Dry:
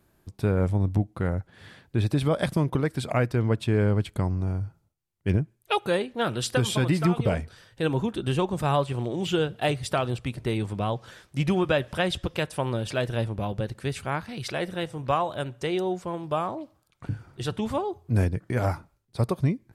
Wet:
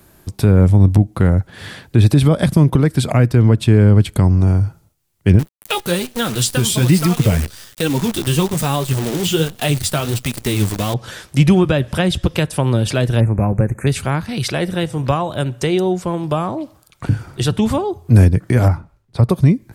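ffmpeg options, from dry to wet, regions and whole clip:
-filter_complex "[0:a]asettb=1/sr,asplit=3[a][b][c];[a]atrim=end=5.394[d];[b]atrim=start=5.39:end=10.94,asetpts=PTS-STARTPTS,afade=t=in:d=0.004:c=qsin,afade=t=out:st=5.546:d=0.004:c=qsin,highshelf=f=3.3k:g=11.5,flanger=delay=3.6:depth=9.7:regen=36:speed=1.2:shape=sinusoidal,acrusher=bits=7:dc=4:mix=0:aa=0.000001[e];[c]atrim=start=10.936[f];[d][e]acrossfade=d=0.004:c1=hsin:c2=qsin[g];[g][f]acrossfade=d=0.004:c1=qsin:c2=hsin,asettb=1/sr,asplit=3[h][i][j];[h]atrim=end=13.204[k];[i]atrim=start=13.2:end=13.87,asetpts=PTS-STARTPTS,afade=t=in:d=0.004:c=qsin,afade=t=out:st=0.666:d=0.004:c=qsin,asuperstop=centerf=4000:order=20:qfactor=1.1,bass=f=250:g=1,treble=f=4k:g=-5[l];[j]atrim=start=13.866[m];[k][l]acrossfade=d=0.004:c1=hsin:c2=qsin[n];[n][m]acrossfade=d=0.004:c1=qsin:c2=hsin,asettb=1/sr,asplit=3[o][p][q];[o]atrim=end=18.684[r];[p]atrim=start=18.68:end=19.3,asetpts=PTS-STARTPTS,afade=t=in:d=0.004:c=qsin,afade=t=out:st=0.616:d=0.004:c=qsin,lowpass=f=1.4k:p=1,equalizer=f=330:w=0.65:g=-4[s];[q]atrim=start=19.296[t];[r][s]acrossfade=d=0.004:c1=hsin:c2=qsin[u];[u][t]acrossfade=d=0.004:c1=qsin:c2=hsin,highshelf=f=4.8k:g=6.5,acrossover=split=300[v][w];[w]acompressor=threshold=-40dB:ratio=2[x];[v][x]amix=inputs=2:normalize=0,alimiter=level_in=15.5dB:limit=-1dB:release=50:level=0:latency=1,volume=-1dB"

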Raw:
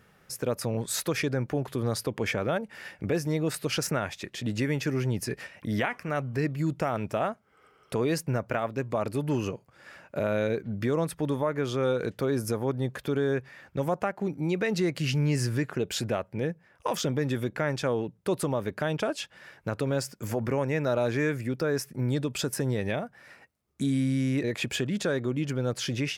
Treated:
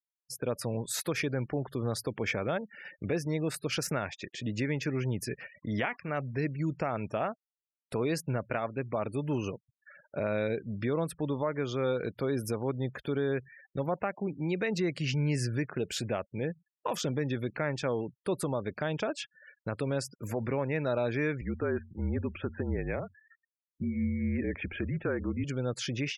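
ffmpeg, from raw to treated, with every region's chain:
-filter_complex "[0:a]asettb=1/sr,asplit=3[a][b][c];[a]atrim=end=21.414[d];[b]atrim=start=21.41:end=25.44,asetpts=PTS-STARTPTS,afade=t=in:d=0.004:c=qsin,afade=t=out:st=4.026:d=0.004:c=qsin,lowpass=f=2.3k:w=0.5412,lowpass=f=2.3k:w=1.3066,bandreject=f=135.4:t=h:w=4,bandreject=f=270.8:t=h:w=4,afreqshift=-45[e];[c]atrim=start=25.436[f];[d][e]acrossfade=d=0.004:c1=hsin:c2=qsin[g];[g][f]acrossfade=d=0.004:c1=qsin:c2=hsin,agate=range=-33dB:threshold=-48dB:ratio=3:detection=peak,afftfilt=real='re*gte(hypot(re,im),0.00794)':imag='im*gte(hypot(re,im),0.00794)':win_size=1024:overlap=0.75,equalizer=f=2.3k:t=o:w=0.25:g=3,volume=-3.5dB"

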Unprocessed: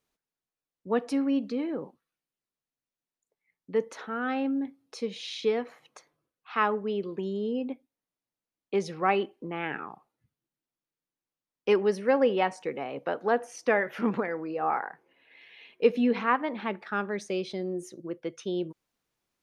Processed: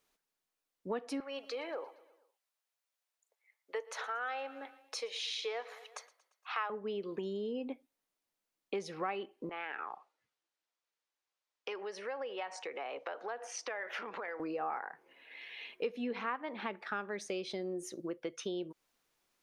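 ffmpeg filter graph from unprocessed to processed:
-filter_complex "[0:a]asettb=1/sr,asplit=3[a][b][c];[a]atrim=end=1.204[d];[b]atrim=start=1.2:end=6.7,asetpts=PTS-STARTPTS,afade=t=in:d=0.004:c=qsin,afade=t=out:st=5.496:d=0.004:c=qsin,highpass=f=520:w=0.5412,highpass=f=520:w=1.3066,aecho=1:1:116|232|348|464:0.0891|0.0499|0.0279|0.0157,atrim=end_sample=242550[e];[c]atrim=start=6.696[f];[d][e]acrossfade=d=0.004:c1=hsin:c2=qsin[g];[g][f]acrossfade=d=0.004:c1=qsin:c2=hsin,asettb=1/sr,asplit=3[h][i][j];[h]atrim=end=9.494[k];[i]atrim=start=9.49:end=14.4,asetpts=PTS-STARTPTS,afade=t=in:d=0.004:c=qsin,afade=t=out:st=4.906:d=0.004:c=qsin,acompressor=threshold=-36dB:ratio=4:attack=3.2:release=140:knee=1:detection=peak,acrossover=split=420 7800:gain=0.112 1 0.0891[l][m][n];[l][m][n]amix=inputs=3:normalize=0[o];[j]atrim=start=14.396[p];[k][o]acrossfade=d=0.004:c1=hsin:c2=qsin[q];[q][p]acrossfade=d=0.004:c1=qsin:c2=hsin,equalizer=f=100:w=0.44:g=-10,acompressor=threshold=-41dB:ratio=4,volume=4.5dB"

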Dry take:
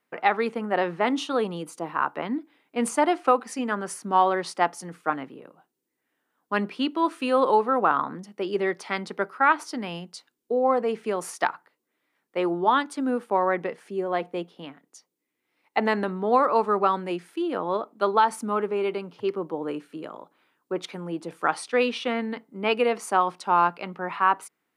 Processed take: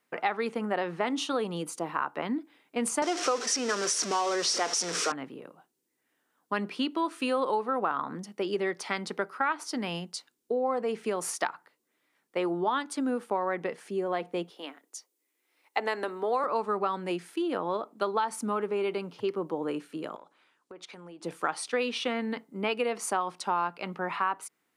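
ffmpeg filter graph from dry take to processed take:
-filter_complex "[0:a]asettb=1/sr,asplit=3[a][b][c];[a]atrim=end=3.024[d];[b]atrim=start=3.02:end=5.12,asetpts=PTS-STARTPTS,afade=t=in:d=0.004:c=qsin,afade=t=out:st=2.096:d=0.004:c=qsin,aeval=exprs='val(0)+0.5*0.0596*sgn(val(0))':c=same,highpass=320,equalizer=f=440:t=q:w=4:g=7,equalizer=f=840:t=q:w=4:g=-6,equalizer=f=5.6k:t=q:w=4:g=10,lowpass=f=8.5k:w=0.5412,lowpass=f=8.5k:w=1.3066[e];[c]atrim=start=5.116[f];[d][e]acrossfade=d=0.004:c1=hsin:c2=qsin[g];[g][f]acrossfade=d=0.004:c1=qsin:c2=hsin,asettb=1/sr,asplit=3[h][i][j];[h]atrim=end=14.504[k];[i]atrim=start=14.5:end=16.44,asetpts=PTS-STARTPTS,afade=t=in:d=0.004:c=qsin,afade=t=out:st=1.936:d=0.004:c=qsin,highpass=f=300:w=0.5412,highpass=f=300:w=1.3066,highshelf=f=8.3k:g=6[l];[j]atrim=start=16.436[m];[k][l]acrossfade=d=0.004:c1=hsin:c2=qsin[n];[n][m]acrossfade=d=0.004:c1=qsin:c2=hsin,asettb=1/sr,asplit=3[o][p][q];[o]atrim=end=20.164[r];[p]atrim=start=20.16:end=21.24,asetpts=PTS-STARTPTS,afade=t=in:d=0.004:c=qsin,afade=t=out:st=1.076:d=0.004:c=qsin,lowshelf=f=320:g=-8.5,acompressor=threshold=-43dB:ratio=10:attack=3.2:release=140:knee=1:detection=peak,lowpass=8.4k[s];[q]atrim=start=21.236[t];[r][s]acrossfade=d=0.004:c1=hsin:c2=qsin[u];[u][t]acrossfade=d=0.004:c1=qsin:c2=hsin,equalizer=f=7.7k:w=0.53:g=5,acompressor=threshold=-27dB:ratio=3"

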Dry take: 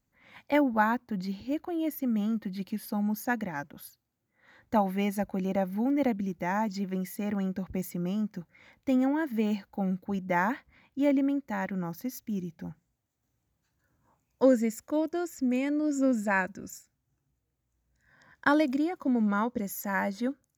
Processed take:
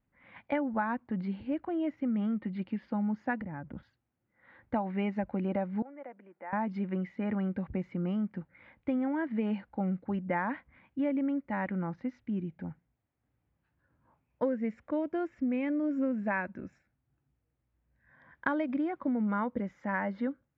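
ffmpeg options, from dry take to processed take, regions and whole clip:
-filter_complex "[0:a]asettb=1/sr,asplit=3[a][b][c];[a]atrim=end=3.414[d];[b]atrim=start=3.41:end=3.83,asetpts=PTS-STARTPTS,afade=t=in:d=0.004:c=qsin,afade=t=out:st=0.416:d=0.004:c=qsin,aemphasis=mode=reproduction:type=riaa,acompressor=threshold=-35dB:ratio=10:attack=3.2:release=140:knee=1:detection=peak[e];[c]atrim=start=3.826[f];[d][e]acrossfade=d=0.004:c1=hsin:c2=qsin[g];[g][f]acrossfade=d=0.004:c1=qsin:c2=hsin,asettb=1/sr,asplit=3[h][i][j];[h]atrim=end=5.824[k];[i]atrim=start=5.82:end=6.53,asetpts=PTS-STARTPTS,afade=t=in:d=0.004:c=qsin,afade=t=out:st=0.706:d=0.004:c=qsin,acompressor=threshold=-37dB:ratio=4:attack=3.2:release=140:knee=1:detection=peak,asuperpass=centerf=1000:order=4:qfactor=0.66[l];[j]atrim=start=6.526[m];[k][l]acrossfade=d=0.004:c1=hsin:c2=qsin[n];[n][m]acrossfade=d=0.004:c1=qsin:c2=hsin,lowpass=f=2.7k:w=0.5412,lowpass=f=2.7k:w=1.3066,acompressor=threshold=-27dB:ratio=6"

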